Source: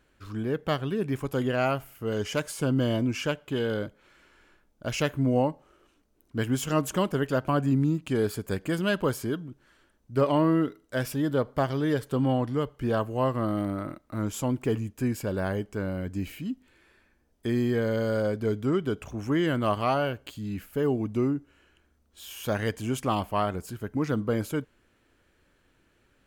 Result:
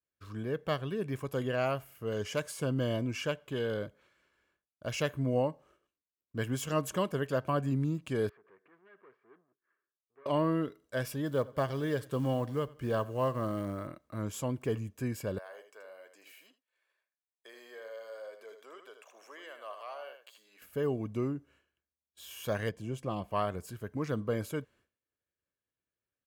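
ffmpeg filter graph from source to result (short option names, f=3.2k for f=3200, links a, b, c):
-filter_complex "[0:a]asettb=1/sr,asplit=3[a][b][c];[a]atrim=end=8.294[d];[b]atrim=start=8.29:end=10.26,asetpts=PTS-STARTPTS,afade=t=in:d=0.004:c=qsin,afade=t=out:st=1.966:d=0.004:c=qsin,acompressor=threshold=-40dB:ratio=6:attack=3.2:release=140:knee=1:detection=peak,aeval=exprs='(tanh(282*val(0)+0.5)-tanh(0.5))/282':c=same,highpass=380,equalizer=f=390:t=q:w=4:g=9,equalizer=f=560:t=q:w=4:g=-7,equalizer=f=800:t=q:w=4:g=-3,equalizer=f=1.2k:t=q:w=4:g=6,equalizer=f=1.8k:t=q:w=4:g=4,lowpass=f=2.2k:w=0.5412,lowpass=f=2.2k:w=1.3066[e];[c]atrim=start=10.256[f];[d][e]acrossfade=d=0.004:c1=hsin:c2=qsin[g];[g][f]acrossfade=d=0.004:c1=qsin:c2=hsin,asettb=1/sr,asplit=3[h][i][j];[h]atrim=end=11.264[k];[i]atrim=start=11.26:end=13.88,asetpts=PTS-STARTPTS,afade=t=in:d=0.004:c=qsin,afade=t=out:st=2.616:d=0.004:c=qsin,acrusher=bits=8:mode=log:mix=0:aa=0.000001,bandreject=f=720:w=21,aecho=1:1:89|178|267:0.0841|0.0328|0.0128,atrim=end_sample=115542[l];[j]atrim=start=13.876[m];[k][l]acrossfade=d=0.004:c1=hsin:c2=qsin[n];[n][m]acrossfade=d=0.004:c1=qsin:c2=hsin,asettb=1/sr,asplit=3[o][p][q];[o]atrim=end=15.384[r];[p]atrim=start=15.38:end=20.62,asetpts=PTS-STARTPTS,afade=t=in:d=0.004:c=qsin,afade=t=out:st=5.236:d=0.004:c=qsin,highpass=f=530:w=0.5412,highpass=f=530:w=1.3066,acompressor=threshold=-58dB:ratio=1.5:attack=3.2:release=140:knee=1:detection=peak,aecho=1:1:79:0.398,atrim=end_sample=231084[s];[q]atrim=start=20.616[t];[r][s]acrossfade=d=0.004:c1=hsin:c2=qsin[u];[u][t]acrossfade=d=0.004:c1=qsin:c2=hsin,asettb=1/sr,asplit=3[v][w][x];[v]atrim=end=22.694[y];[w]atrim=start=22.69:end=23.31,asetpts=PTS-STARTPTS,afade=t=in:d=0.004:c=qsin,afade=t=out:st=0.616:d=0.004:c=qsin,lowpass=f=2.4k:p=1,equalizer=f=1.5k:w=0.64:g=-8.5,aecho=1:1:5.8:0.31,atrim=end_sample=27342[z];[x]atrim=start=23.306[aa];[y][z]acrossfade=d=0.004:c1=hsin:c2=qsin[ab];[ab][aa]acrossfade=d=0.004:c1=qsin:c2=hsin,highpass=75,aecho=1:1:1.8:0.3,agate=range=-33dB:threshold=-52dB:ratio=3:detection=peak,volume=-5.5dB"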